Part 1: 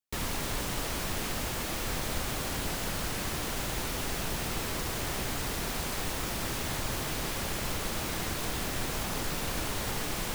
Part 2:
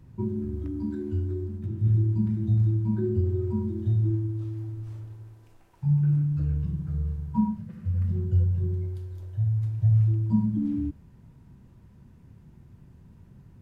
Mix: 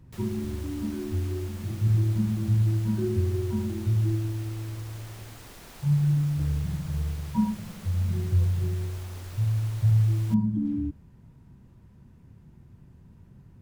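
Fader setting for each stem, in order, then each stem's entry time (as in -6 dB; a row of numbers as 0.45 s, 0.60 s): -13.5 dB, -0.5 dB; 0.00 s, 0.00 s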